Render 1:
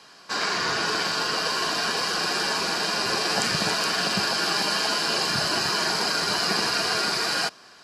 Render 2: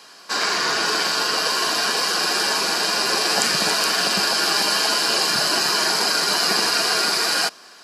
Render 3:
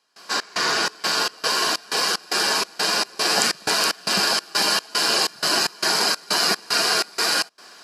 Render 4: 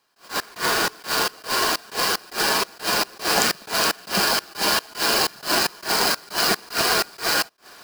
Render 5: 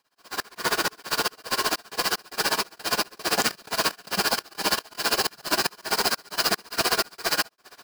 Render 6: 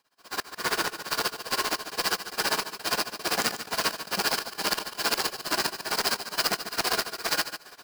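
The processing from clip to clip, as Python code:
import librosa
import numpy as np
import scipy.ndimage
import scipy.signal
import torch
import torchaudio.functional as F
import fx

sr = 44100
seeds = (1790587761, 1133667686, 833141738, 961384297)

y1 = scipy.signal.sosfilt(scipy.signal.butter(2, 220.0, 'highpass', fs=sr, output='sos'), x)
y1 = fx.high_shelf(y1, sr, hz=9600.0, db=11.5)
y1 = F.gain(torch.from_numpy(y1), 3.5).numpy()
y2 = fx.step_gate(y1, sr, bpm=188, pattern='..xxx..xxxx', floor_db=-24.0, edge_ms=4.5)
y3 = fx.halfwave_hold(y2, sr)
y3 = fx.attack_slew(y3, sr, db_per_s=240.0)
y3 = F.gain(torch.from_numpy(y3), -3.5).numpy()
y4 = y3 * (1.0 - 0.92 / 2.0 + 0.92 / 2.0 * np.cos(2.0 * np.pi * 15.0 * (np.arange(len(y3)) / sr)))
y5 = fx.echo_feedback(y4, sr, ms=145, feedback_pct=15, wet_db=-13.0)
y5 = fx.transformer_sat(y5, sr, knee_hz=1600.0)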